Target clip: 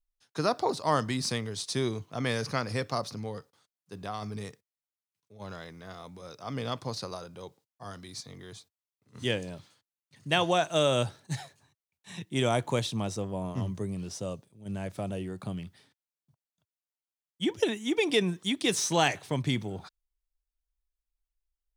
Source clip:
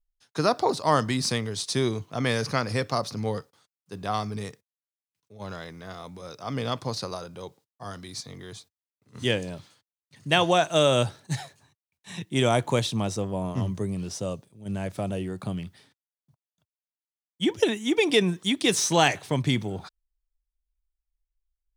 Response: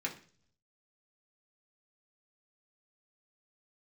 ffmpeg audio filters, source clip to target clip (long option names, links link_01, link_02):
-filter_complex "[0:a]asplit=3[link_01][link_02][link_03];[link_01]afade=type=out:start_time=3.15:duration=0.02[link_04];[link_02]acompressor=threshold=-31dB:ratio=2,afade=type=in:start_time=3.15:duration=0.02,afade=type=out:start_time=4.21:duration=0.02[link_05];[link_03]afade=type=in:start_time=4.21:duration=0.02[link_06];[link_04][link_05][link_06]amix=inputs=3:normalize=0,volume=-4.5dB"